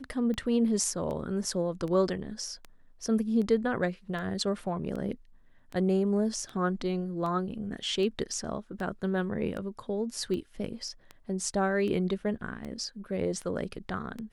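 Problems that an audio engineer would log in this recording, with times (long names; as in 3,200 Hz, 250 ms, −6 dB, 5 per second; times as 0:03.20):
scratch tick 78 rpm −26 dBFS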